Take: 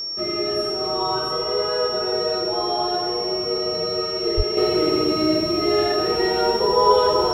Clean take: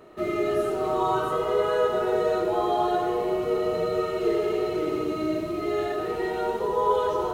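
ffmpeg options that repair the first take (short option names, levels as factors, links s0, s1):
-filter_complex "[0:a]bandreject=f=5500:w=30,asplit=3[s0][s1][s2];[s0]afade=t=out:st=4.36:d=0.02[s3];[s1]highpass=f=140:w=0.5412,highpass=f=140:w=1.3066,afade=t=in:st=4.36:d=0.02,afade=t=out:st=4.48:d=0.02[s4];[s2]afade=t=in:st=4.48:d=0.02[s5];[s3][s4][s5]amix=inputs=3:normalize=0,asetnsamples=n=441:p=0,asendcmd='4.57 volume volume -7dB',volume=1"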